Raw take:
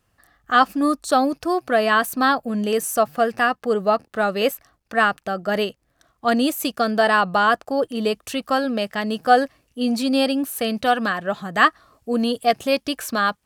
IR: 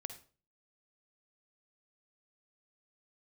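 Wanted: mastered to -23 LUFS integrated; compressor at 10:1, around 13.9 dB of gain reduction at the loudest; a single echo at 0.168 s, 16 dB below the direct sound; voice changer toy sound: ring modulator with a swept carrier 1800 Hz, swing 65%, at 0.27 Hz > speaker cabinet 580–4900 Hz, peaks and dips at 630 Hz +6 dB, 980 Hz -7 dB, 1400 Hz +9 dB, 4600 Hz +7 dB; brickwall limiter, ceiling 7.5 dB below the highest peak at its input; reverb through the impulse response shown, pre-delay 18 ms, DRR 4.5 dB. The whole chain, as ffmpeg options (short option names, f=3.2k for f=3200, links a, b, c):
-filter_complex "[0:a]acompressor=threshold=-24dB:ratio=10,alimiter=limit=-20.5dB:level=0:latency=1,aecho=1:1:168:0.158,asplit=2[a][b];[1:a]atrim=start_sample=2205,adelay=18[c];[b][c]afir=irnorm=-1:irlink=0,volume=-1.5dB[d];[a][d]amix=inputs=2:normalize=0,aeval=exprs='val(0)*sin(2*PI*1800*n/s+1800*0.65/0.27*sin(2*PI*0.27*n/s))':c=same,highpass=580,equalizer=f=630:t=q:w=4:g=6,equalizer=f=980:t=q:w=4:g=-7,equalizer=f=1.4k:t=q:w=4:g=9,equalizer=f=4.6k:t=q:w=4:g=7,lowpass=f=4.9k:w=0.5412,lowpass=f=4.9k:w=1.3066,volume=5dB"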